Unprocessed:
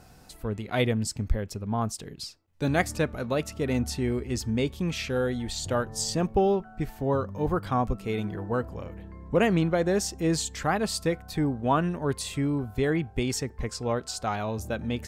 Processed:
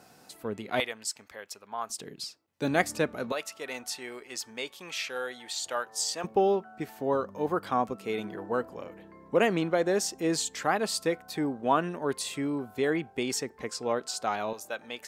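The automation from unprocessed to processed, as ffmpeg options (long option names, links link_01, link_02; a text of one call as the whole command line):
ffmpeg -i in.wav -af "asetnsamples=nb_out_samples=441:pad=0,asendcmd='0.8 highpass f 880;1.9 highpass f 220;3.32 highpass f 770;6.24 highpass f 280;14.53 highpass f 670',highpass=230" out.wav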